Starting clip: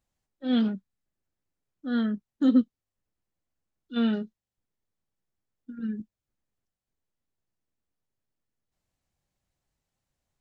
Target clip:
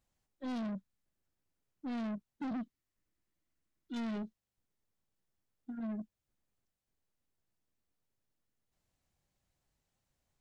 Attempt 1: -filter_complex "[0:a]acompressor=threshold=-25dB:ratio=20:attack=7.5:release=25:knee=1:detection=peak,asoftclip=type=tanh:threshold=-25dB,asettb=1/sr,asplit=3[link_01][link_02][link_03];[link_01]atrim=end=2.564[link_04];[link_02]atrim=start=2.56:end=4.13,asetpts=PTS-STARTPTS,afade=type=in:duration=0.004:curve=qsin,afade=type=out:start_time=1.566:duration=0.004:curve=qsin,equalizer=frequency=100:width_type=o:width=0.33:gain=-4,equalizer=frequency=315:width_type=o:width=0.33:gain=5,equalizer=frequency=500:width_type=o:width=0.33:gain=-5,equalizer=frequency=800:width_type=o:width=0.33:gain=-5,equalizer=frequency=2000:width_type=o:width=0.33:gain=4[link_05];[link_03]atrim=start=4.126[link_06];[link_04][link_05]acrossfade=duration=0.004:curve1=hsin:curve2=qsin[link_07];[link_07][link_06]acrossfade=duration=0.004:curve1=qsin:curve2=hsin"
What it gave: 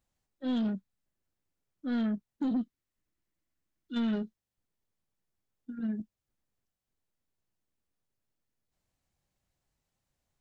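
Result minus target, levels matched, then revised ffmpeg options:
soft clipping: distortion −9 dB
-filter_complex "[0:a]acompressor=threshold=-25dB:ratio=20:attack=7.5:release=25:knee=1:detection=peak,asoftclip=type=tanh:threshold=-36dB,asettb=1/sr,asplit=3[link_01][link_02][link_03];[link_01]atrim=end=2.564[link_04];[link_02]atrim=start=2.56:end=4.13,asetpts=PTS-STARTPTS,afade=type=in:duration=0.004:curve=qsin,afade=type=out:start_time=1.566:duration=0.004:curve=qsin,equalizer=frequency=100:width_type=o:width=0.33:gain=-4,equalizer=frequency=315:width_type=o:width=0.33:gain=5,equalizer=frequency=500:width_type=o:width=0.33:gain=-5,equalizer=frequency=800:width_type=o:width=0.33:gain=-5,equalizer=frequency=2000:width_type=o:width=0.33:gain=4[link_05];[link_03]atrim=start=4.126[link_06];[link_04][link_05]acrossfade=duration=0.004:curve1=hsin:curve2=qsin[link_07];[link_07][link_06]acrossfade=duration=0.004:curve1=qsin:curve2=hsin"

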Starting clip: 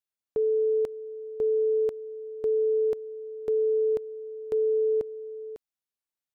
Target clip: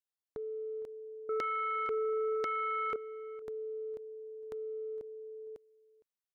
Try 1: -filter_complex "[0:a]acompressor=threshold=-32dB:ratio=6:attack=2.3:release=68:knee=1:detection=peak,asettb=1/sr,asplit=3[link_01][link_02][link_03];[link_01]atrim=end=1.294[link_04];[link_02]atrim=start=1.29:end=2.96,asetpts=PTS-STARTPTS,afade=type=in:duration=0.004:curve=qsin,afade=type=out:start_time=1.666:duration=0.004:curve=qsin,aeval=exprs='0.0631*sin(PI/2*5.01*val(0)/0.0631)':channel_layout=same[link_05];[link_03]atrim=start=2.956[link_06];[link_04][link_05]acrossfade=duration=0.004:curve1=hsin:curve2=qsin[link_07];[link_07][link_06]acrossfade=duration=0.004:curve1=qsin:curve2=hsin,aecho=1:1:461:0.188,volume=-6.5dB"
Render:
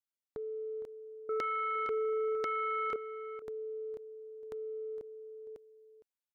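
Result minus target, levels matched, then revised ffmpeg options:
echo-to-direct +6.5 dB
-filter_complex "[0:a]acompressor=threshold=-32dB:ratio=6:attack=2.3:release=68:knee=1:detection=peak,asettb=1/sr,asplit=3[link_01][link_02][link_03];[link_01]atrim=end=1.294[link_04];[link_02]atrim=start=1.29:end=2.96,asetpts=PTS-STARTPTS,afade=type=in:duration=0.004:curve=qsin,afade=type=out:start_time=1.666:duration=0.004:curve=qsin,aeval=exprs='0.0631*sin(PI/2*5.01*val(0)/0.0631)':channel_layout=same[link_05];[link_03]atrim=start=2.956[link_06];[link_04][link_05]acrossfade=duration=0.004:curve1=hsin:curve2=qsin[link_07];[link_07][link_06]acrossfade=duration=0.004:curve1=qsin:curve2=hsin,aecho=1:1:461:0.0891,volume=-6.5dB"

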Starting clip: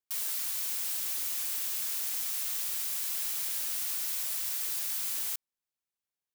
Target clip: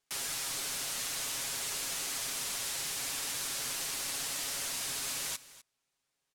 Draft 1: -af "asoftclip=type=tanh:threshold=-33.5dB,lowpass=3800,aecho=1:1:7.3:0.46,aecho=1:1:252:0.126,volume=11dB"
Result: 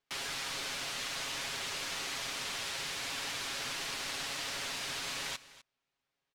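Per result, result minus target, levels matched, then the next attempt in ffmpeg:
8,000 Hz band −4.5 dB; soft clipping: distortion −5 dB
-af "asoftclip=type=tanh:threshold=-33.5dB,lowpass=9300,aecho=1:1:7.3:0.46,aecho=1:1:252:0.126,volume=11dB"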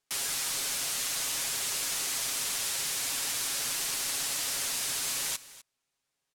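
soft clipping: distortion −5 dB
-af "asoftclip=type=tanh:threshold=-40.5dB,lowpass=9300,aecho=1:1:7.3:0.46,aecho=1:1:252:0.126,volume=11dB"

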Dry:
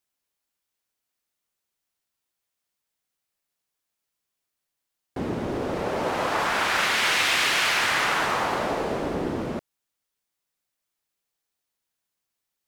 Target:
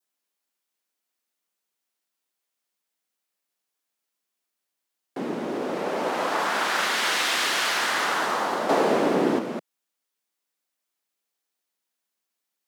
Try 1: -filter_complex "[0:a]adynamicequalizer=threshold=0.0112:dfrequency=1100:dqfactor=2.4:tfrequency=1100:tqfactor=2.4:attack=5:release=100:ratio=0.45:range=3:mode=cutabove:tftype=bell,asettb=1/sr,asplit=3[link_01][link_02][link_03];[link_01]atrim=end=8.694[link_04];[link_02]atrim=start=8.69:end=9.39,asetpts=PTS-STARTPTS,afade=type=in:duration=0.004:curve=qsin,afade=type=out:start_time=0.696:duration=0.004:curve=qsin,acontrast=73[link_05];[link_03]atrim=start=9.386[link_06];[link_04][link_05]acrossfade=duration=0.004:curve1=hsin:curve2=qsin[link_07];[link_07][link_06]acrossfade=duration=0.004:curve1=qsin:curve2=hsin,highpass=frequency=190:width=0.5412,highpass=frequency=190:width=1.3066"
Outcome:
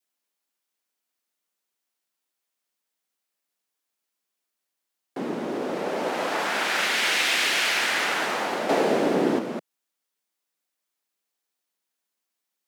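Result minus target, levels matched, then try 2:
1,000 Hz band −3.0 dB
-filter_complex "[0:a]adynamicequalizer=threshold=0.0112:dfrequency=2400:dqfactor=2.4:tfrequency=2400:tqfactor=2.4:attack=5:release=100:ratio=0.45:range=3:mode=cutabove:tftype=bell,asettb=1/sr,asplit=3[link_01][link_02][link_03];[link_01]atrim=end=8.694[link_04];[link_02]atrim=start=8.69:end=9.39,asetpts=PTS-STARTPTS,afade=type=in:duration=0.004:curve=qsin,afade=type=out:start_time=0.696:duration=0.004:curve=qsin,acontrast=73[link_05];[link_03]atrim=start=9.386[link_06];[link_04][link_05]acrossfade=duration=0.004:curve1=hsin:curve2=qsin[link_07];[link_07][link_06]acrossfade=duration=0.004:curve1=qsin:curve2=hsin,highpass=frequency=190:width=0.5412,highpass=frequency=190:width=1.3066"

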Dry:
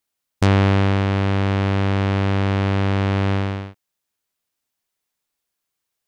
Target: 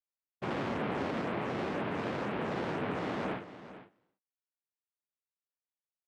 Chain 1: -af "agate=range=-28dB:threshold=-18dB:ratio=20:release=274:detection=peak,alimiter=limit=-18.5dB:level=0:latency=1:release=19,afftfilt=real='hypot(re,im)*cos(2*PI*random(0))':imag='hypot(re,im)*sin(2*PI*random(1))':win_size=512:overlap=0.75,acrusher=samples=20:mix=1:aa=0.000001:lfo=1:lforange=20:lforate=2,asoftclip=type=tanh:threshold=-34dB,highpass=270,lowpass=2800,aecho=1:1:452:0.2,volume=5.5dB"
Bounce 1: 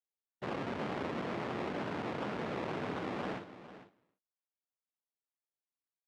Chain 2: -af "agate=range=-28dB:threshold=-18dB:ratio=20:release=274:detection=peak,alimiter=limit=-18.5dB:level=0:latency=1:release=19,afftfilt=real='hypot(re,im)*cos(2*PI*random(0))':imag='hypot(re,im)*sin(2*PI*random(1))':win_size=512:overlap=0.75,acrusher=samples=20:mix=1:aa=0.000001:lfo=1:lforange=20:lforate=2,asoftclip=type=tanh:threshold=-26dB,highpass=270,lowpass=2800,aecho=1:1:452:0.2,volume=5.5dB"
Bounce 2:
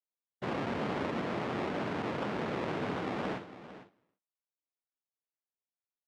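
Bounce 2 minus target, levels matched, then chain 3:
sample-and-hold swept by an LFO: distortion +8 dB
-af "agate=range=-28dB:threshold=-18dB:ratio=20:release=274:detection=peak,alimiter=limit=-18.5dB:level=0:latency=1:release=19,afftfilt=real='hypot(re,im)*cos(2*PI*random(0))':imag='hypot(re,im)*sin(2*PI*random(1))':win_size=512:overlap=0.75,acrusher=samples=6:mix=1:aa=0.000001:lfo=1:lforange=6:lforate=2,asoftclip=type=tanh:threshold=-26dB,highpass=270,lowpass=2800,aecho=1:1:452:0.2,volume=5.5dB"

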